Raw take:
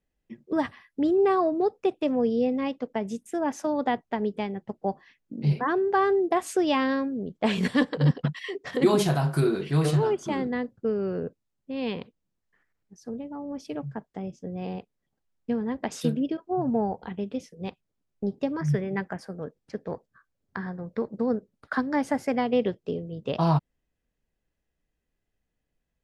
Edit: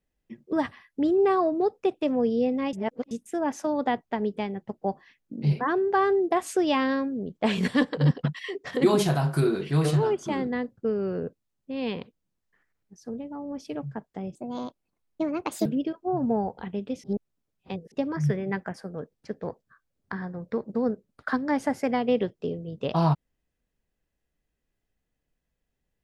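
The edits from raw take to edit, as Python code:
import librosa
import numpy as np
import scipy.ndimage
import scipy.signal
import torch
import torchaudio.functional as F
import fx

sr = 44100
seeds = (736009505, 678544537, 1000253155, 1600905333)

y = fx.edit(x, sr, fx.reverse_span(start_s=2.73, length_s=0.38),
    fx.speed_span(start_s=14.35, length_s=1.75, speed=1.34),
    fx.reverse_span(start_s=17.48, length_s=0.88), tone=tone)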